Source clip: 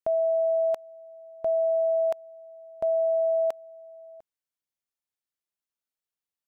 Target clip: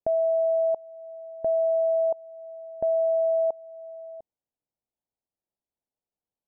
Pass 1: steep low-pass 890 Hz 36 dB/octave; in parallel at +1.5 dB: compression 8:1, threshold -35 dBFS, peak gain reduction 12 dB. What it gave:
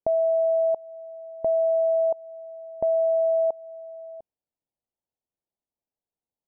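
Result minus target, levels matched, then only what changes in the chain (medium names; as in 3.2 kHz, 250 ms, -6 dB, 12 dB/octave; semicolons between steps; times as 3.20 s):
compression: peak gain reduction -8.5 dB
change: compression 8:1, threshold -44.5 dBFS, peak gain reduction 20 dB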